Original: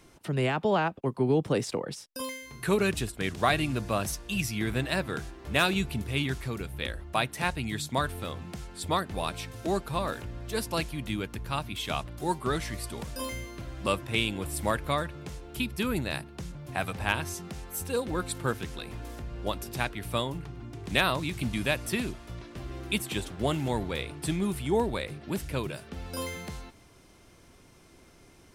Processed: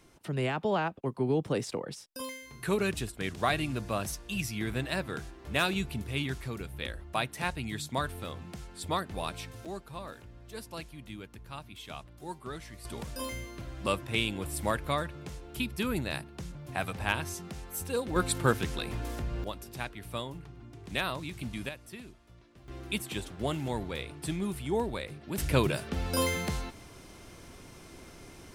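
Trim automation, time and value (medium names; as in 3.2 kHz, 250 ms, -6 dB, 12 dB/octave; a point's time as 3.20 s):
-3.5 dB
from 9.65 s -11.5 dB
from 12.85 s -2 dB
from 18.16 s +4 dB
from 19.44 s -7 dB
from 21.69 s -15.5 dB
from 22.68 s -4 dB
from 25.38 s +6.5 dB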